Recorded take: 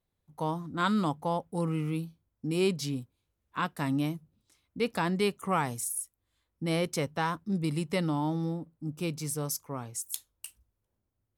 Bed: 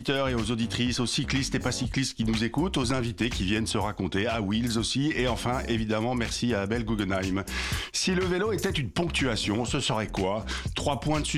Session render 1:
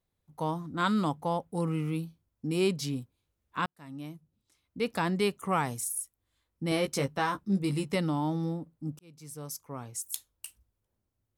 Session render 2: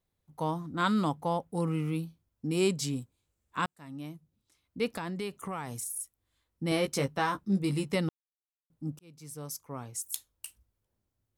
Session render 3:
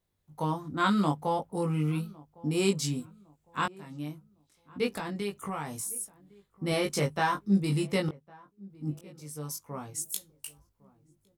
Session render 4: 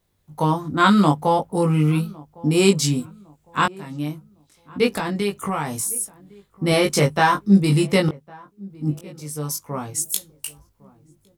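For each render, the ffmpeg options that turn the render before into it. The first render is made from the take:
-filter_complex "[0:a]asettb=1/sr,asplit=3[s0][s1][s2];[s0]atrim=end=6.704[s3];[s1]atrim=start=6.7:end=7.95,asetpts=PTS-STARTPTS,afade=t=in:d=0.004:c=qsin,afade=t=out:st=1.246:d=0.004:c=qsin,asplit=2[s4][s5];[s5]adelay=15,volume=0.562[s6];[s4][s6]amix=inputs=2:normalize=0,atrim=end_sample=55125[s7];[s2]atrim=start=7.946[s8];[s3][s7]acrossfade=d=0.004:c1=hsin:c2=qsin[s9];[s9][s8]acrossfade=d=0.004:c1=qsin:c2=hsin,asplit=3[s10][s11][s12];[s10]atrim=end=3.66,asetpts=PTS-STARTPTS,afade=t=out:st=3.656:d=0.004:c=hsin[s13];[s11]atrim=start=3.66:end=8.99,asetpts=PTS-STARTPTS,afade=t=in:d=1.34,afade=t=out:st=5.326:d=0.004:c=hsin[s14];[s12]atrim=start=8.99,asetpts=PTS-STARTPTS,afade=t=in:d=1.07[s15];[s13][s14][s15]concat=n=3:v=0:a=1"
-filter_complex "[0:a]asettb=1/sr,asplit=3[s0][s1][s2];[s0]atrim=end=2.574[s3];[s1]atrim=start=2.57:end=3.79,asetpts=PTS-STARTPTS,afade=t=in:d=0.004:c=qsin,afade=t=out:st=1.216:d=0.004:c=qsin,equalizer=f=7700:t=o:w=0.39:g=9[s4];[s2]atrim=start=3.786[s5];[s3][s4]acrossfade=d=0.004:c1=hsin:c2=qsin[s6];[s6][s5]acrossfade=d=0.004:c1=qsin:c2=hsin,asettb=1/sr,asplit=3[s7][s8][s9];[s7]atrim=end=4.944[s10];[s8]atrim=start=4.94:end=6,asetpts=PTS-STARTPTS,afade=t=in:d=0.004:c=qsin,afade=t=out:st=1.056:d=0.004:c=qsin,acompressor=threshold=0.0224:ratio=4:attack=3.2:release=140:knee=1:detection=peak[s11];[s9]atrim=start=5.996[s12];[s10][s11]acrossfade=d=0.004:c1=hsin:c2=qsin[s13];[s13][s12]acrossfade=d=0.004:c1=qsin:c2=hsin,asplit=3[s14][s15][s16];[s14]atrim=end=8.09,asetpts=PTS-STARTPTS,afade=t=out:st=8.086:d=0.004:c=hsin[s17];[s15]atrim=start=8.09:end=8.7,asetpts=PTS-STARTPTS,volume=0[s18];[s16]atrim=start=8.7,asetpts=PTS-STARTPTS,afade=t=in:d=0.004:c=hsin[s19];[s17][s18][s19]concat=n=3:v=0:a=1"
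-filter_complex "[0:a]asplit=2[s0][s1];[s1]adelay=20,volume=0.708[s2];[s0][s2]amix=inputs=2:normalize=0,asplit=2[s3][s4];[s4]adelay=1107,lowpass=f=1000:p=1,volume=0.075,asplit=2[s5][s6];[s6]adelay=1107,lowpass=f=1000:p=1,volume=0.38,asplit=2[s7][s8];[s8]adelay=1107,lowpass=f=1000:p=1,volume=0.38[s9];[s3][s5][s7][s9]amix=inputs=4:normalize=0"
-af "volume=3.35"

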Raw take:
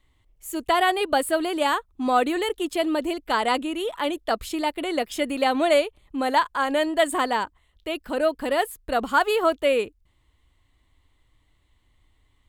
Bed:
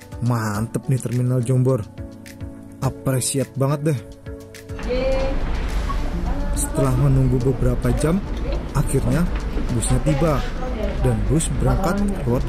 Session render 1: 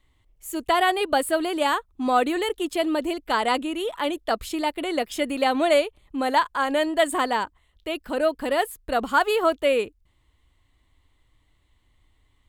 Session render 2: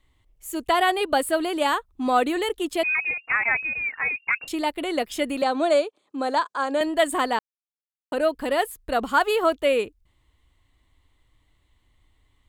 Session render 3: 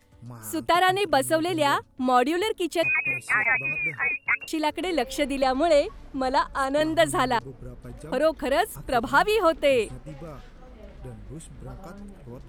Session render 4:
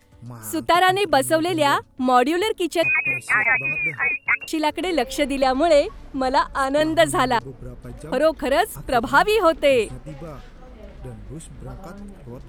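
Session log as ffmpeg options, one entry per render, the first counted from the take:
-af anull
-filter_complex "[0:a]asettb=1/sr,asplit=3[s0][s1][s2];[s0]atrim=end=2.834[s3];[s1]atrim=start=2.83:end=4.48,asetpts=PTS-STARTPTS,afade=t=in:d=0.004:c=qsin,afade=t=out:st=1.646:d=0.004:c=qsin,lowpass=f=2400:t=q:w=0.5098,lowpass=f=2400:t=q:w=0.6013,lowpass=f=2400:t=q:w=0.9,lowpass=f=2400:t=q:w=2.563,afreqshift=-2800[s4];[s2]atrim=start=4.476[s5];[s3][s4]acrossfade=d=0.004:c1=hsin:c2=qsin[s6];[s6][s5]acrossfade=d=0.004:c1=qsin:c2=hsin,asettb=1/sr,asplit=3[s7][s8][s9];[s7]atrim=end=5.424[s10];[s8]atrim=start=5.42:end=6.81,asetpts=PTS-STARTPTS,afade=t=in:d=0.004:c=qsin,afade=t=out:st=1.386:d=0.004:c=qsin,highpass=f=260:w=0.5412,highpass=f=260:w=1.3066,equalizer=f=910:t=q:w=4:g=-3,equalizer=f=2000:t=q:w=4:g=-9,equalizer=f=2900:t=q:w=4:g=-8,lowpass=f=8600:w=0.5412,lowpass=f=8600:w=1.3066[s11];[s9]atrim=start=6.806[s12];[s10][s11]acrossfade=d=0.004:c1=hsin:c2=qsin[s13];[s13][s12]acrossfade=d=0.004:c1=qsin:c2=hsin,asplit=3[s14][s15][s16];[s14]atrim=end=7.39,asetpts=PTS-STARTPTS,afade=t=out:st=7.386:d=0.004:c=hsin[s17];[s15]atrim=start=7.39:end=8.12,asetpts=PTS-STARTPTS,volume=0[s18];[s16]atrim=start=8.12,asetpts=PTS-STARTPTS,afade=t=in:d=0.004:c=hsin[s19];[s17][s18][s19]concat=n=3:v=0:a=1"
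-filter_complex "[1:a]volume=0.0841[s0];[0:a][s0]amix=inputs=2:normalize=0"
-af "volume=1.58"

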